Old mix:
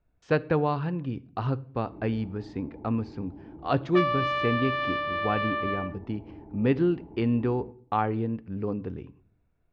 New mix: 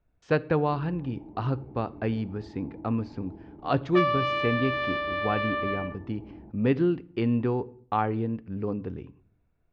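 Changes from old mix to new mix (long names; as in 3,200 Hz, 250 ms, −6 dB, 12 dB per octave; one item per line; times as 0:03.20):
first sound: entry −1.20 s
second sound: send +8.0 dB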